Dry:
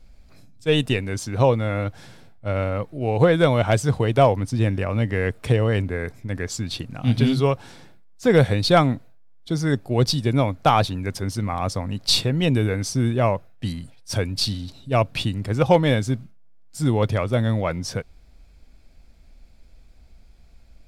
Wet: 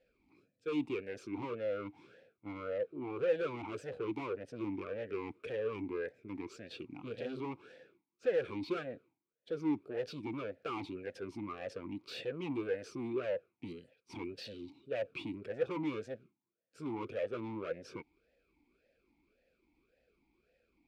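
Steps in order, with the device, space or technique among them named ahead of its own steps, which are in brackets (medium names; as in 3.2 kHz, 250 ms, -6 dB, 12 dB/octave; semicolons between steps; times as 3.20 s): talk box (valve stage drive 26 dB, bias 0.5; talking filter e-u 1.8 Hz); trim +3.5 dB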